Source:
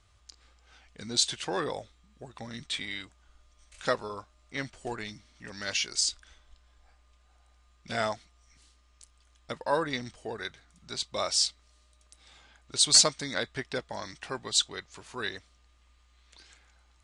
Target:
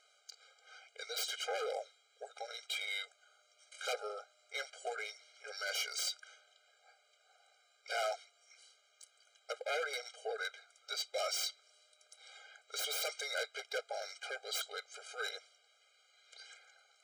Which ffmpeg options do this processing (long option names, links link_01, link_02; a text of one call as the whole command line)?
ffmpeg -i in.wav -filter_complex "[0:a]aeval=exprs='0.0501*(abs(mod(val(0)/0.0501+3,4)-2)-1)':channel_layout=same,asplit=2[link_01][link_02];[link_02]highpass=frequency=720:poles=1,volume=12dB,asoftclip=type=tanh:threshold=-26dB[link_03];[link_01][link_03]amix=inputs=2:normalize=0,lowpass=frequency=7900:poles=1,volume=-6dB,afftfilt=real='re*eq(mod(floor(b*sr/1024/410),2),1)':imag='im*eq(mod(floor(b*sr/1024/410),2),1)':win_size=1024:overlap=0.75,volume=-2.5dB" out.wav